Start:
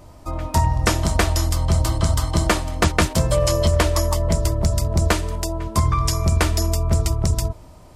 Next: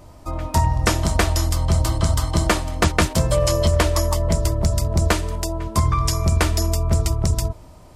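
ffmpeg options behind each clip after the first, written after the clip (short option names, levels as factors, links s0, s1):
-af anull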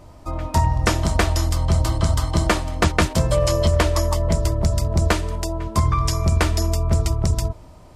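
-af "highshelf=f=8000:g=-6.5"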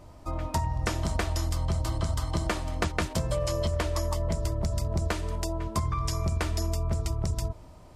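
-af "acompressor=threshold=0.112:ratio=6,volume=0.562"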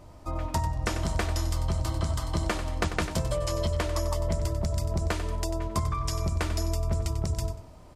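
-af "aecho=1:1:94|188|282:0.282|0.0648|0.0149"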